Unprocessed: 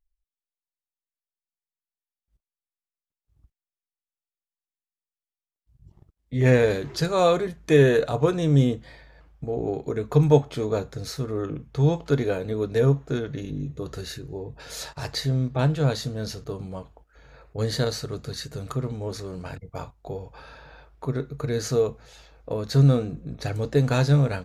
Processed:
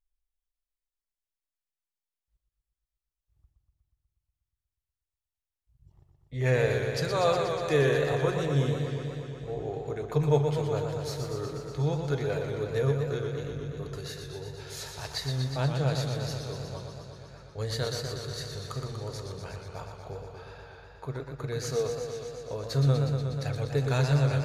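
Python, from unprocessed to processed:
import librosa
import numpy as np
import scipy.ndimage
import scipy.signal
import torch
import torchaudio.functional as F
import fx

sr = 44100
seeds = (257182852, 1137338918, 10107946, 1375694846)

y = fx.peak_eq(x, sr, hz=240.0, db=-10.5, octaves=0.99)
y = fx.echo_warbled(y, sr, ms=121, feedback_pct=79, rate_hz=2.8, cents=93, wet_db=-6.0)
y = y * 10.0 ** (-5.0 / 20.0)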